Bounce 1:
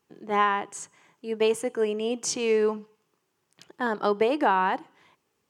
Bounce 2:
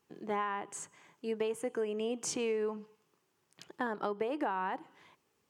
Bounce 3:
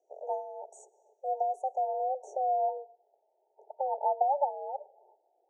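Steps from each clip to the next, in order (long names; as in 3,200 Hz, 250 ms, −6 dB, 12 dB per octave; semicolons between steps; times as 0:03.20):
dynamic equaliser 5,000 Hz, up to −7 dB, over −46 dBFS, Q 1; downward compressor 5 to 1, threshold −30 dBFS, peak gain reduction 11.5 dB; level −1.5 dB
low-pass filter sweep 3,100 Hz → 650 Hz, 0:01.72–0:03.03; frequency shifter +270 Hz; brick-wall band-stop 920–5,600 Hz; level +3.5 dB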